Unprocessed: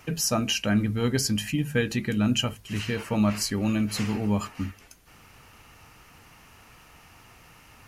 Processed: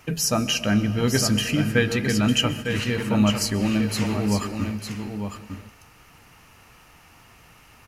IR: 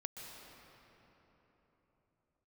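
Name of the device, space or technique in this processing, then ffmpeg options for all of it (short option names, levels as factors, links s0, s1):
keyed gated reverb: -filter_complex "[0:a]asplit=3[s0][s1][s2];[1:a]atrim=start_sample=2205[s3];[s1][s3]afir=irnorm=-1:irlink=0[s4];[s2]apad=whole_len=347310[s5];[s4][s5]sidechaingate=range=0.0224:threshold=0.00891:ratio=16:detection=peak,volume=0.596[s6];[s0][s6]amix=inputs=2:normalize=0,asettb=1/sr,asplit=3[s7][s8][s9];[s7]atrim=end=1.144[s10];[s8]atrim=start=1.14:end=2.84,asetpts=PTS-STARTPTS,afade=t=in:d=0.004:c=qsin,afade=t=out:st=1.696:d=0.004:c=qsin,equalizer=f=1500:t=o:w=2.8:g=3.5[s11];[s9]atrim=start=2.836[s12];[s10][s11]acrossfade=d=0.004:c1=hsin:c2=qsin[s13];[s13][s12]acrossfade=d=0.004:c1=qsin:c2=hsin,aecho=1:1:904:0.422"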